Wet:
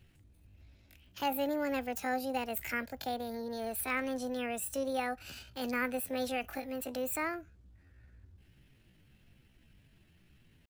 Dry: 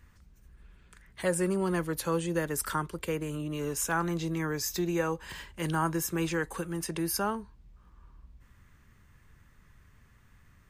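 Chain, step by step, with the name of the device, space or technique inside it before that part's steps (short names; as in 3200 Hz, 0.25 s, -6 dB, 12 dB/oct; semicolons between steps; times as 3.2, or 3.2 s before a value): chipmunk voice (pitch shift +7.5 st); gain -4.5 dB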